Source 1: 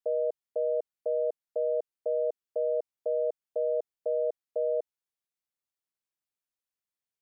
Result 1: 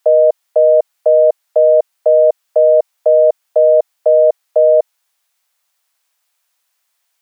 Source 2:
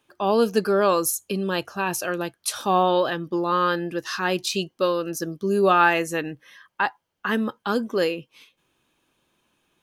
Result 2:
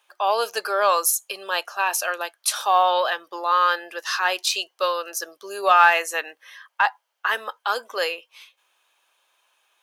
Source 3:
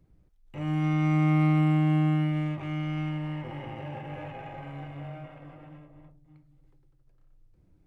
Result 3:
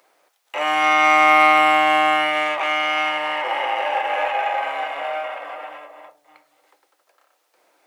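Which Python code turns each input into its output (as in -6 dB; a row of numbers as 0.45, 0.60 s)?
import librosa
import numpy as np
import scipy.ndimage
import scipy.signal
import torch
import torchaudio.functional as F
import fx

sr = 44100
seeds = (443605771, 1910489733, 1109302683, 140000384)

p1 = scipy.signal.sosfilt(scipy.signal.butter(4, 630.0, 'highpass', fs=sr, output='sos'), x)
p2 = 10.0 ** (-18.0 / 20.0) * np.tanh(p1 / 10.0 ** (-18.0 / 20.0))
p3 = p1 + (p2 * 10.0 ** (-10.0 / 20.0))
y = librosa.util.normalize(p3) * 10.0 ** (-3 / 20.0)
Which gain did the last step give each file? +22.5, +2.0, +19.5 dB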